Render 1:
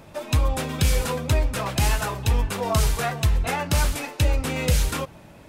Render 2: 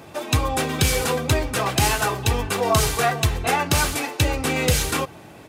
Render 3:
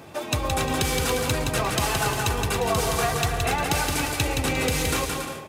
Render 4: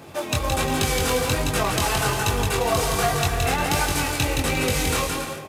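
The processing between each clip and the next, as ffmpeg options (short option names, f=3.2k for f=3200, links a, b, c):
-af "highpass=110,aecho=1:1:2.6:0.35,volume=5dB"
-filter_complex "[0:a]acompressor=threshold=-20dB:ratio=6,asplit=2[a][b];[b]aecho=0:1:170|280.5|352.3|399|429.4:0.631|0.398|0.251|0.158|0.1[c];[a][c]amix=inputs=2:normalize=0,volume=-1.5dB"
-af "flanger=delay=20:depth=4:speed=1.3,acrusher=bits=3:mode=log:mix=0:aa=0.000001,aresample=32000,aresample=44100,volume=4.5dB"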